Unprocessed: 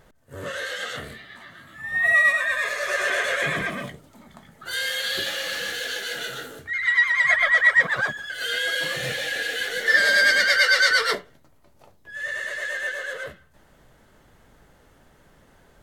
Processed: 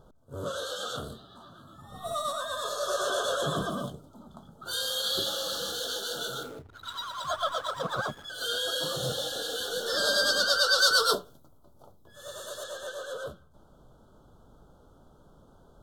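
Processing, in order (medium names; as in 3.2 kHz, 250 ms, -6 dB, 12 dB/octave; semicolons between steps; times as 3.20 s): elliptic band-stop 1.4–3.3 kHz, stop band 60 dB; 6.43–8.25 s: hysteresis with a dead band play -40.5 dBFS; 10.78–12.64 s: treble shelf 10 kHz +11.5 dB; tape noise reduction on one side only decoder only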